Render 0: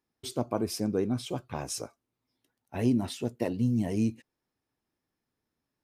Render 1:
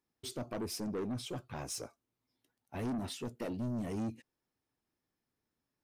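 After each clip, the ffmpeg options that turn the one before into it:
-af "asoftclip=type=tanh:threshold=-30dB,volume=-3dB"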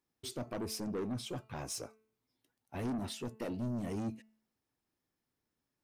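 -af "bandreject=f=218.7:t=h:w=4,bandreject=f=437.4:t=h:w=4,bandreject=f=656.1:t=h:w=4,bandreject=f=874.8:t=h:w=4,bandreject=f=1.0935k:t=h:w=4,bandreject=f=1.3122k:t=h:w=4,bandreject=f=1.5309k:t=h:w=4,bandreject=f=1.7496k:t=h:w=4,bandreject=f=1.9683k:t=h:w=4,bandreject=f=2.187k:t=h:w=4,bandreject=f=2.4057k:t=h:w=4,bandreject=f=2.6244k:t=h:w=4,bandreject=f=2.8431k:t=h:w=4"

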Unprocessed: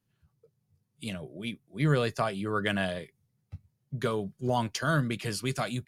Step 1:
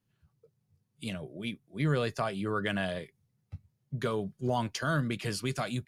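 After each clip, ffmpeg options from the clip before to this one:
-filter_complex "[0:a]highshelf=f=8.3k:g=-4,asplit=2[a][b];[b]alimiter=limit=-22dB:level=0:latency=1:release=121,volume=1.5dB[c];[a][c]amix=inputs=2:normalize=0,volume=-7dB"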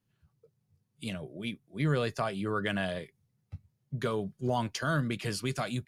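-af anull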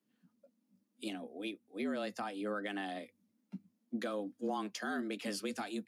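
-af "alimiter=level_in=1dB:limit=-24dB:level=0:latency=1:release=400,volume=-1dB,afreqshift=99,volume=-2.5dB"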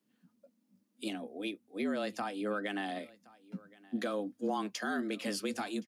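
-af "aecho=1:1:1070:0.0708,volume=3dB"

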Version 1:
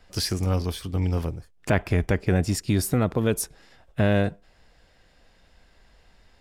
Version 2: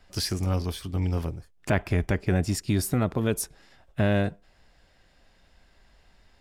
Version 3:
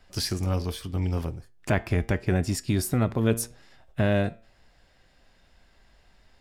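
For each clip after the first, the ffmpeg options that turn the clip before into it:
-af "bandreject=f=480:w=12,volume=-2dB"
-af "flanger=delay=7.7:depth=1.2:regen=87:speed=0.78:shape=sinusoidal,volume=4.5dB"

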